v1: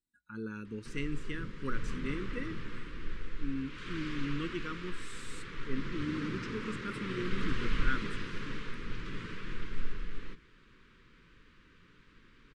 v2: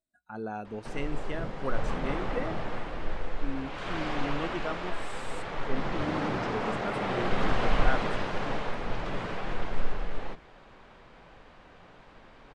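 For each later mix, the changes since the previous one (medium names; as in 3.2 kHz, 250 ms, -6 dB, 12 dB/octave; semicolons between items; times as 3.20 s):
background +5.0 dB; master: remove Butterworth band-stop 710 Hz, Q 0.77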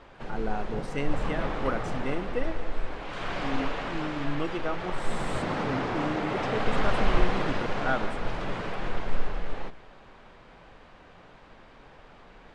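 background: entry -0.65 s; reverb: on, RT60 2.9 s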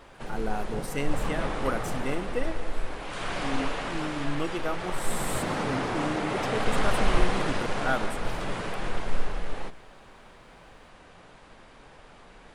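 master: remove distance through air 110 m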